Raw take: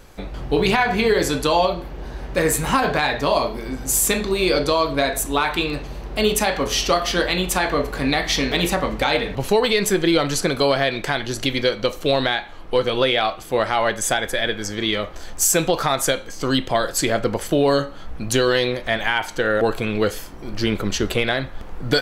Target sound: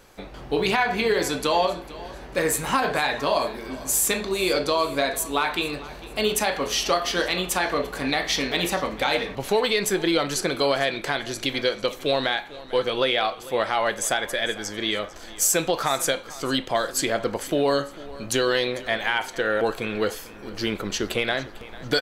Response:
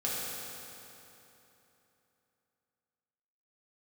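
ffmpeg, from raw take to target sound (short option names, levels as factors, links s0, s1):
-filter_complex "[0:a]lowshelf=f=160:g=-10.5,asplit=2[s0][s1];[s1]aecho=0:1:449|898|1347:0.119|0.0452|0.0172[s2];[s0][s2]amix=inputs=2:normalize=0,volume=0.708"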